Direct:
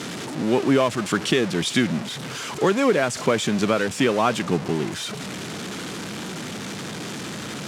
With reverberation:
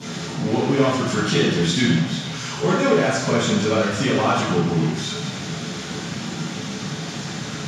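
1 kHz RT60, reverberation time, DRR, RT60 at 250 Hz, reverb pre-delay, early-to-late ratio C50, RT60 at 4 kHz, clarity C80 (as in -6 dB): 1.1 s, 1.1 s, -12.5 dB, 1.0 s, 3 ms, -0.5 dB, 1.1 s, 2.5 dB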